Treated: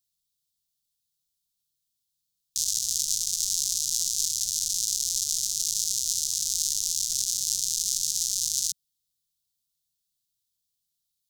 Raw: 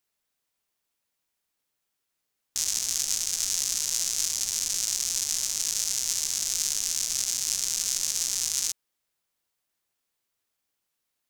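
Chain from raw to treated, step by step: elliptic band-stop 170–3700 Hz, stop band 50 dB; trim +1.5 dB

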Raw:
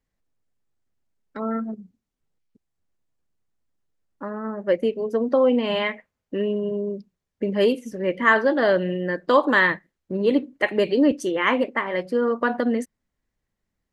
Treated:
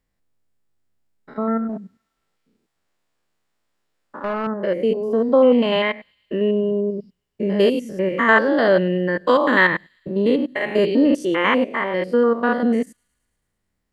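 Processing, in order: spectrogram pixelated in time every 100 ms; band-stop 6.2 kHz, Q 14; feedback echo behind a high-pass 110 ms, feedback 71%, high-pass 5.3 kHz, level -22.5 dB; 1.69–4.47 s: overdrive pedal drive 15 dB, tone 4.9 kHz, clips at -19.5 dBFS; trim +5.5 dB

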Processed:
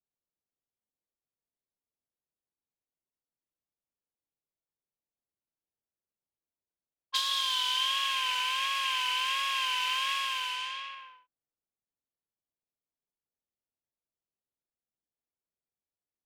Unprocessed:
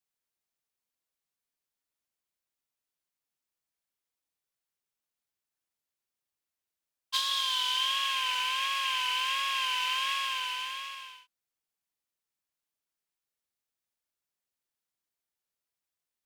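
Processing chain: level-controlled noise filter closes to 650 Hz, open at -29.5 dBFS

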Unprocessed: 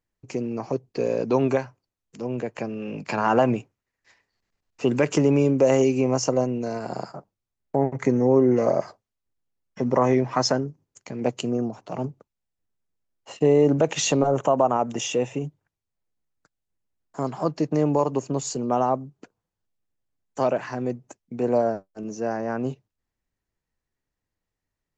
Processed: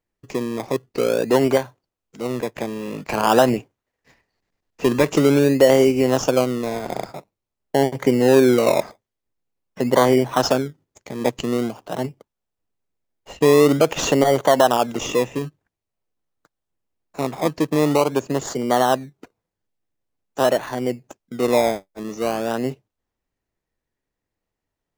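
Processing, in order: tone controls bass -6 dB, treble -3 dB; in parallel at -3 dB: decimation with a swept rate 24×, swing 60% 0.47 Hz; on the sum: trim +1.5 dB

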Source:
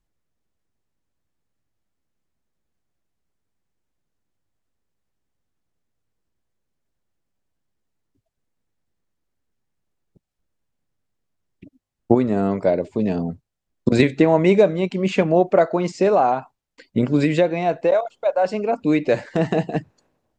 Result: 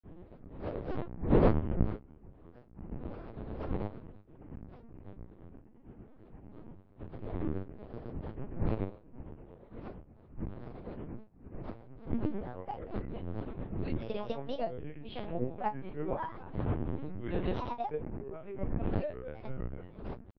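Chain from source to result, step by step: wind noise 280 Hz -18 dBFS; feedback comb 84 Hz, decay 0.41 s, harmonics all, mix 90%; LPC vocoder at 8 kHz pitch kept; granulator 201 ms, grains 8.8 per s, pitch spread up and down by 7 st; trim -8.5 dB

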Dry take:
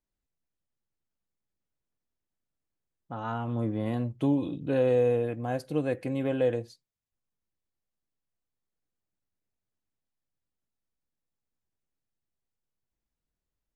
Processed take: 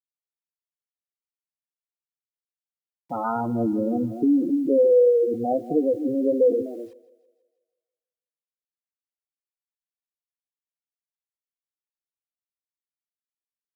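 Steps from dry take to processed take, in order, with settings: in parallel at -1.5 dB: peak limiter -25 dBFS, peak gain reduction 10.5 dB; on the sum: three-band isolator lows -15 dB, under 190 Hz, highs -23 dB, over 2.1 kHz; multi-tap echo 252/255 ms -12/-12 dB; spectral gate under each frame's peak -10 dB strong; bit crusher 11-bit; on a send: thinning echo 163 ms, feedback 59%, high-pass 420 Hz, level -19 dB; on the sum: trim +6 dB

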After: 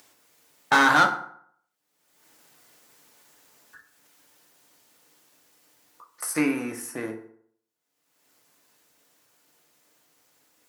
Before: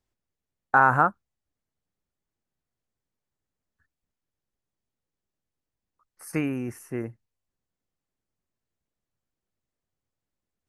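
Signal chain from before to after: Doppler pass-by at 2.82 s, 11 m/s, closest 11 m; gate with hold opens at -51 dBFS; treble shelf 8.1 kHz +11 dB; waveshaping leveller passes 1; upward compressor, threshold -37 dBFS; overdrive pedal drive 23 dB, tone 7.1 kHz, clips at -8.5 dBFS; high-pass 130 Hz 12 dB/octave; FDN reverb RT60 0.63 s, low-frequency decay 0.95×, high-frequency decay 0.6×, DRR 3 dB; trim -2.5 dB

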